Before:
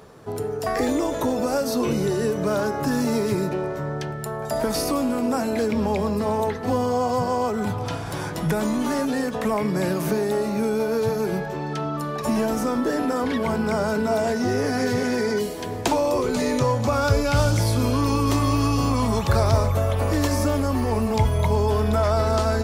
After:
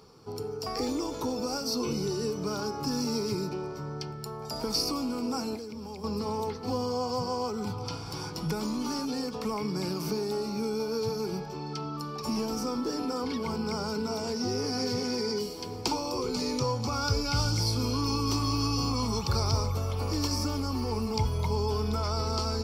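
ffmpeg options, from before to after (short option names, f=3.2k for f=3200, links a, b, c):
-filter_complex "[0:a]asettb=1/sr,asplit=3[a][b][c];[a]atrim=end=5.554[d];[b]atrim=start=5.55:end=6.04,asetpts=PTS-STARTPTS,afade=t=in:d=0.004:c=qsin,afade=t=out:st=0.486:d=0.004:c=qsin,acrossover=split=1600|7500[e][f][g];[e]acompressor=threshold=-31dB:ratio=4[h];[f]acompressor=threshold=-50dB:ratio=4[i];[g]acompressor=threshold=-53dB:ratio=4[j];[h][i][j]amix=inputs=3:normalize=0[k];[c]atrim=start=6.036[l];[d][k]acrossfade=d=0.004:c1=hsin:c2=qsin[m];[m][l]acrossfade=d=0.004:c1=qsin:c2=hsin,superequalizer=8b=0.355:11b=0.316:14b=3.55:16b=0.708,volume=-8dB"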